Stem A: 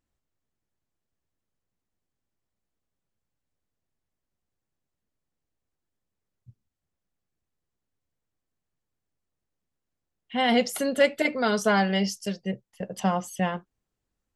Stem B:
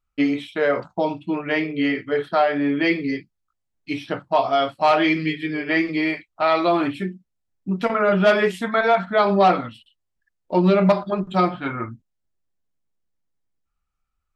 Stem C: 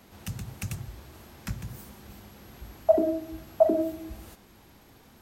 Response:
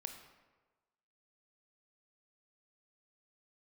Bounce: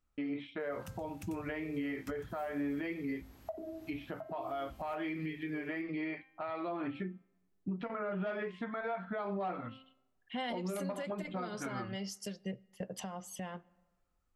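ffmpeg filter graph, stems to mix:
-filter_complex "[0:a]acompressor=threshold=0.0355:ratio=6,volume=0.596,asplit=2[s0][s1];[s1]volume=0.178[s2];[1:a]lowpass=2300,bandreject=f=263.8:t=h:w=4,bandreject=f=527.6:t=h:w=4,bandreject=f=791.4:t=h:w=4,bandreject=f=1055.2:t=h:w=4,bandreject=f=1319:t=h:w=4,bandreject=f=1582.8:t=h:w=4,bandreject=f=1846.6:t=h:w=4,bandreject=f=2110.4:t=h:w=4,bandreject=f=2374.2:t=h:w=4,bandreject=f=2638:t=h:w=4,bandreject=f=2901.8:t=h:w=4,bandreject=f=3165.6:t=h:w=4,bandreject=f=3429.4:t=h:w=4,bandreject=f=3693.2:t=h:w=4,bandreject=f=3957:t=h:w=4,bandreject=f=4220.8:t=h:w=4,bandreject=f=4484.6:t=h:w=4,bandreject=f=4748.4:t=h:w=4,bandreject=f=5012.2:t=h:w=4,bandreject=f=5276:t=h:w=4,bandreject=f=5539.8:t=h:w=4,bandreject=f=5803.6:t=h:w=4,bandreject=f=6067.4:t=h:w=4,bandreject=f=6331.2:t=h:w=4,bandreject=f=6595:t=h:w=4,bandreject=f=6858.8:t=h:w=4,bandreject=f=7122.6:t=h:w=4,bandreject=f=7386.4:t=h:w=4,bandreject=f=7650.2:t=h:w=4,bandreject=f=7914:t=h:w=4,bandreject=f=8177.8:t=h:w=4,acompressor=threshold=0.0631:ratio=6,volume=0.631,asplit=2[s3][s4];[s4]volume=0.0708[s5];[2:a]equalizer=f=69:w=1.5:g=3.5,acompressor=threshold=0.0355:ratio=6,adelay=600,volume=0.335[s6];[3:a]atrim=start_sample=2205[s7];[s2][s5]amix=inputs=2:normalize=0[s8];[s8][s7]afir=irnorm=-1:irlink=0[s9];[s0][s3][s6][s9]amix=inputs=4:normalize=0,alimiter=level_in=1.88:limit=0.0631:level=0:latency=1:release=366,volume=0.531"

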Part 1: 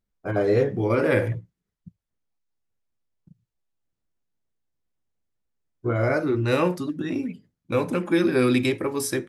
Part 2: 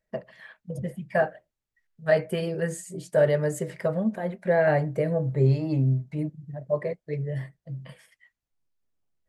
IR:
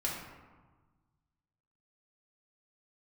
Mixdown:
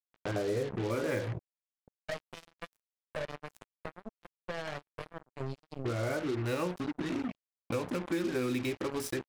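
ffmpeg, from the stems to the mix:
-filter_complex "[0:a]agate=range=0.0224:threshold=0.00501:ratio=3:detection=peak,highshelf=f=8600:g=-11,volume=0.944,asplit=2[s0][s1];[1:a]aeval=exprs='if(lt(val(0),0),0.708*val(0),val(0))':c=same,adynamicequalizer=threshold=0.00891:dfrequency=1800:dqfactor=0.7:tfrequency=1800:tqfactor=0.7:attack=5:release=100:ratio=0.375:range=3.5:mode=boostabove:tftype=highshelf,volume=0.251[s2];[s1]apad=whole_len=409268[s3];[s2][s3]sidechaincompress=threshold=0.00398:ratio=8:attack=5.9:release=239[s4];[s0][s4]amix=inputs=2:normalize=0,acrusher=bits=4:mix=0:aa=0.5,acompressor=threshold=0.0178:ratio=2.5"

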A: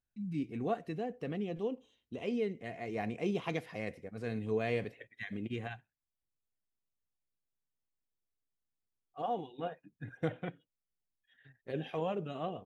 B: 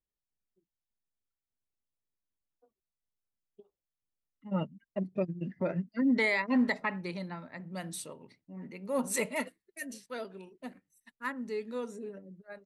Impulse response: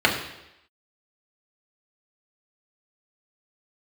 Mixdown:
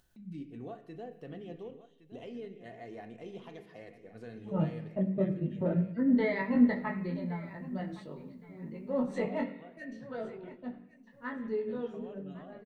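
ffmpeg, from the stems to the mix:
-filter_complex "[0:a]acompressor=mode=upward:threshold=0.00398:ratio=2.5,alimiter=level_in=2.24:limit=0.0631:level=0:latency=1:release=385,volume=0.447,volume=0.501,afade=t=out:st=4.84:d=0.3:silence=0.473151,asplit=3[s0][s1][s2];[s1]volume=0.0708[s3];[s2]volume=0.237[s4];[1:a]lowpass=5100,aemphasis=mode=reproduction:type=riaa,flanger=delay=18.5:depth=2.5:speed=0.69,volume=0.708,asplit=3[s5][s6][s7];[s6]volume=0.0944[s8];[s7]volume=0.158[s9];[2:a]atrim=start_sample=2205[s10];[s3][s8]amix=inputs=2:normalize=0[s11];[s11][s10]afir=irnorm=-1:irlink=0[s12];[s4][s9]amix=inputs=2:normalize=0,aecho=0:1:1116|2232|3348|4464:1|0.28|0.0784|0.022[s13];[s0][s5][s12][s13]amix=inputs=4:normalize=0"

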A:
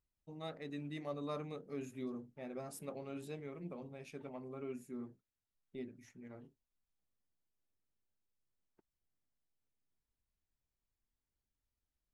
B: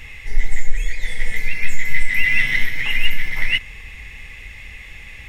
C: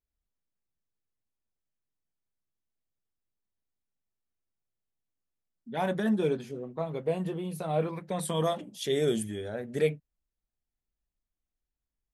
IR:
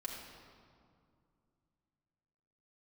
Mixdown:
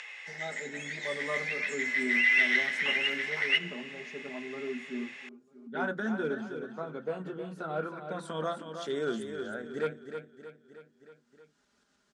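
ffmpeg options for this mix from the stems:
-filter_complex "[0:a]aecho=1:1:4.9:1,volume=1,asplit=2[s0][s1];[s1]volume=0.141[s2];[1:a]highpass=f=550:w=0.5412,highpass=f=550:w=1.3066,volume=0.422,asplit=2[s3][s4];[s4]volume=0.398[s5];[2:a]aeval=exprs='clip(val(0),-1,0.0891)':c=same,equalizer=f=1400:w=4.6:g=14.5,volume=0.422,asplit=2[s6][s7];[s7]volume=0.398[s8];[3:a]atrim=start_sample=2205[s9];[s5][s9]afir=irnorm=-1:irlink=0[s10];[s2][s8]amix=inputs=2:normalize=0,aecho=0:1:315|630|945|1260|1575:1|0.38|0.144|0.0549|0.0209[s11];[s0][s3][s6][s10][s11]amix=inputs=5:normalize=0,lowshelf=f=380:g=5,acompressor=mode=upward:threshold=0.00794:ratio=2.5,highpass=240,equalizer=f=250:t=q:w=4:g=4,equalizer=f=1500:t=q:w=4:g=6,equalizer=f=2300:t=q:w=4:g=-3,lowpass=f=7400:w=0.5412,lowpass=f=7400:w=1.3066"

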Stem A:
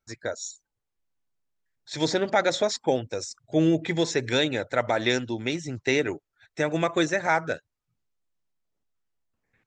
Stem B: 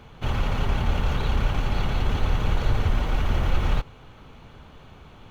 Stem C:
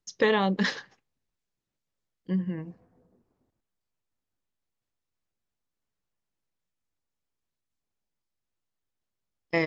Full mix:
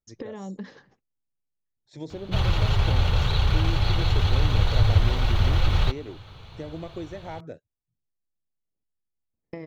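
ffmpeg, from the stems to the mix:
-filter_complex "[0:a]equalizer=f=1500:t=o:w=0.42:g=-7.5,volume=0.251[s0];[1:a]equalizer=f=100:t=o:w=0.67:g=10,equalizer=f=250:t=o:w=0.67:g=-10,equalizer=f=4000:t=o:w=0.67:g=11,adelay=2100,volume=0.944[s1];[2:a]agate=range=0.0224:threshold=0.00251:ratio=3:detection=peak,acompressor=threshold=0.0178:ratio=5,volume=0.794[s2];[s0][s2]amix=inputs=2:normalize=0,tiltshelf=f=820:g=8,acompressor=threshold=0.0224:ratio=3,volume=1[s3];[s1][s3]amix=inputs=2:normalize=0"

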